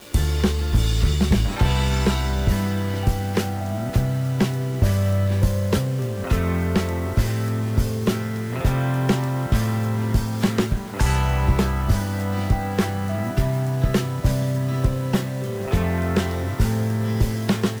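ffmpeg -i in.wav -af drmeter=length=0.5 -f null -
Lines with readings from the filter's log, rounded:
Channel 1: DR: 7.0
Overall DR: 7.0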